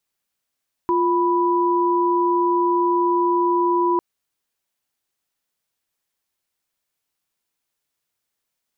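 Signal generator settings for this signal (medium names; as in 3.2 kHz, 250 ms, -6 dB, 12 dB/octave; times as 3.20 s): chord F4/B5 sine, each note -18.5 dBFS 3.10 s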